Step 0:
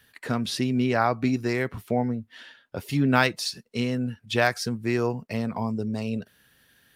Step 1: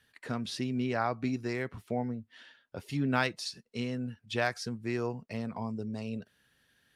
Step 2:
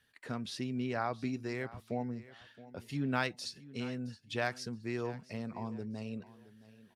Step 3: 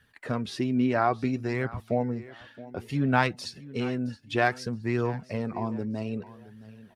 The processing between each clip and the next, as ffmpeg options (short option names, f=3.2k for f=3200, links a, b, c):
-af "lowpass=9.9k,volume=-8dB"
-af "aecho=1:1:670|1340|2010:0.126|0.0365|0.0106,volume=-4dB"
-filter_complex "[0:a]flanger=delay=0.6:depth=3.1:regen=51:speed=0.6:shape=triangular,asplit=2[a][b];[b]adynamicsmooth=sensitivity=1.5:basefreq=2.9k,volume=1.5dB[c];[a][c]amix=inputs=2:normalize=0,volume=8dB"